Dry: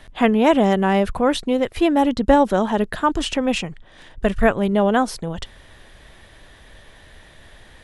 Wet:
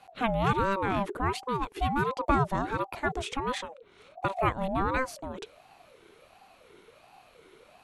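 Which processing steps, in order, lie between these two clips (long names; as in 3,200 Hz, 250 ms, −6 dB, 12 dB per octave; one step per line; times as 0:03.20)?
notch filter 4,400 Hz, Q 7.5
ring modulator whose carrier an LFO sweeps 580 Hz, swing 35%, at 1.4 Hz
level −8 dB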